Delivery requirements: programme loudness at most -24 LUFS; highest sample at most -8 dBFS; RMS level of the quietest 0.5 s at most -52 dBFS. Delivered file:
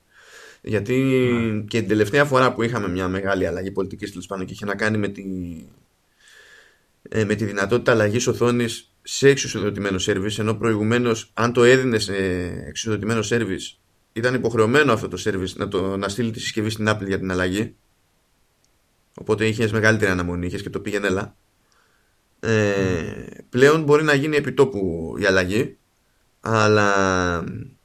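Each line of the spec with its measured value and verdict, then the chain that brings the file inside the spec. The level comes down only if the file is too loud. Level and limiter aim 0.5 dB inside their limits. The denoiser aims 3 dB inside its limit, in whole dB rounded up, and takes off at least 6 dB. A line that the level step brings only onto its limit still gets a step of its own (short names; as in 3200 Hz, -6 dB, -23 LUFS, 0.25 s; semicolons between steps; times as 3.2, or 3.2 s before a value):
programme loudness -21.0 LUFS: fail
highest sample -2.0 dBFS: fail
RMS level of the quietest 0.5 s -64 dBFS: OK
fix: gain -3.5 dB; limiter -8.5 dBFS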